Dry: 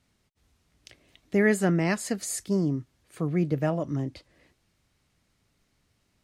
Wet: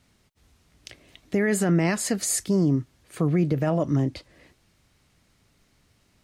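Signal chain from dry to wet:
brickwall limiter −20.5 dBFS, peak gain reduction 10.5 dB
level +7 dB

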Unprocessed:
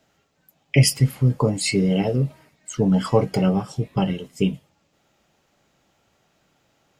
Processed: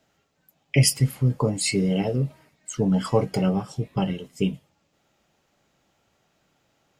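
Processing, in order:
dynamic equaliser 9,400 Hz, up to +4 dB, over −41 dBFS, Q 0.74
level −3 dB

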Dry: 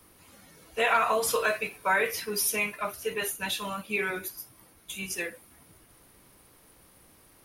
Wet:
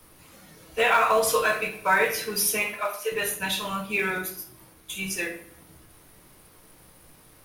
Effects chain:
0:02.62–0:03.12: high-pass filter 410 Hz 24 dB per octave
in parallel at −11 dB: log-companded quantiser 4 bits
on the sum: rectangular room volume 85 cubic metres, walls mixed, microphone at 0.51 metres

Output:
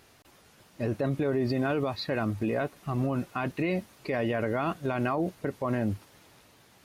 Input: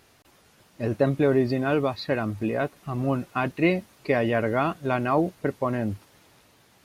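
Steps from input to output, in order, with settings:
brickwall limiter −19.5 dBFS, peak gain reduction 10.5 dB

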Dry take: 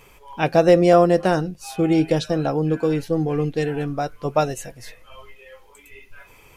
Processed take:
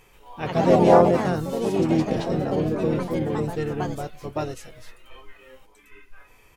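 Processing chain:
pitch-shifted copies added −12 semitones −11 dB, −5 semitones −6 dB
harmonic and percussive parts rebalanced harmonic +7 dB
delay with pitch and tempo change per echo 131 ms, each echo +3 semitones, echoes 3
level −11.5 dB

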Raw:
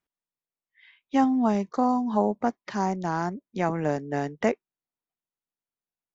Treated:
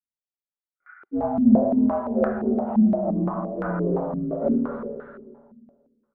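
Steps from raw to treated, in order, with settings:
partials spread apart or drawn together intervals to 83%
noise gate with hold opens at −53 dBFS
in parallel at −1 dB: brickwall limiter −21.5 dBFS, peak gain reduction 10.5 dB
on the sum: soft clipping −17.5 dBFS, distortion −15 dB
spring reverb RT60 1.9 s, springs 51/55 ms, chirp 50 ms, DRR −1 dB
multi-voice chorus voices 6, 0.81 Hz, delay 22 ms, depth 1.1 ms
0:02.90–0:03.93: high-frequency loss of the air 390 metres
on a send: single-tap delay 298 ms −12.5 dB
on the sum: low-pass on a step sequencer 5.8 Hz 220–1,500 Hz
level −3.5 dB

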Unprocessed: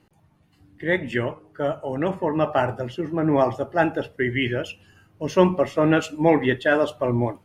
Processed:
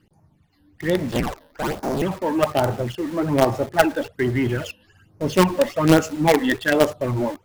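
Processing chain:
0:01.12–0:02.02: sub-harmonics by changed cycles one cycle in 2, inverted
all-pass phaser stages 12, 1.2 Hz, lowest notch 120–3,400 Hz
in parallel at −10.5 dB: log-companded quantiser 2 bits
on the sum: level +1.5 dB

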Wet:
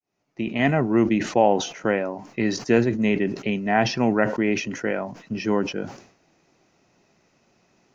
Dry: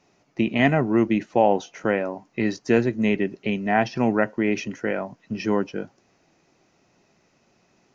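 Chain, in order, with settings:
fade in at the beginning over 0.83 s
level that may fall only so fast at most 100 dB per second

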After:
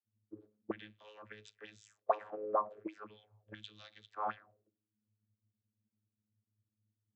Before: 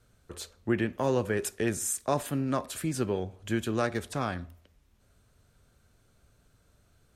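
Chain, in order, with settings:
channel vocoder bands 32, saw 106 Hz
envelope filter 230–3,600 Hz, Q 5, up, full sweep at −27 dBFS
multiband upward and downward expander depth 70%
level +7.5 dB

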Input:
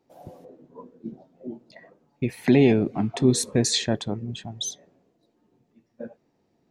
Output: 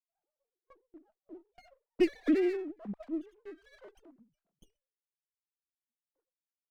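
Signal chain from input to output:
three sine waves on the formant tracks
source passing by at 0:02.02, 35 m/s, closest 3.7 metres
noise gate with hold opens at −52 dBFS
windowed peak hold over 9 samples

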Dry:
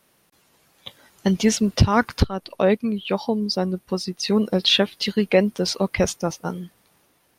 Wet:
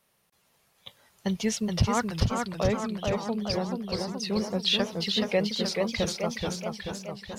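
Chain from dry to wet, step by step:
parametric band 300 Hz −12.5 dB 0.38 octaves
notch filter 1,500 Hz, Q 20
feedback echo with a swinging delay time 429 ms, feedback 62%, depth 167 cents, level −4 dB
level −7.5 dB

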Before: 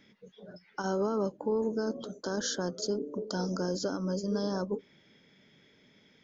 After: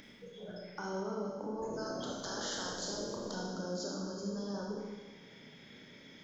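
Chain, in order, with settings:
0:01.57–0:03.33: ceiling on every frequency bin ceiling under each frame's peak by 20 dB
upward compression, threshold −52 dBFS
brickwall limiter −28.5 dBFS, peak gain reduction 9 dB
downward compressor, threshold −39 dBFS, peak gain reduction 7 dB
on a send: feedback echo with a high-pass in the loop 148 ms, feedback 67%, level −14 dB
on the sum: four-comb reverb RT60 1.3 s, combs from 26 ms, DRR −2 dB

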